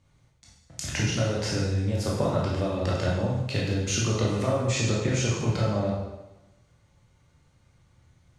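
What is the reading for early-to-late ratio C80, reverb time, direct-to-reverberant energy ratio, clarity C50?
3.5 dB, 1.0 s, -5.5 dB, 0.5 dB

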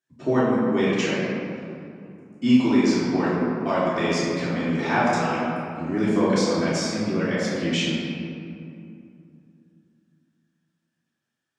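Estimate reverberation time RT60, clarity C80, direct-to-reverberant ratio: 2.6 s, -0.5 dB, -11.0 dB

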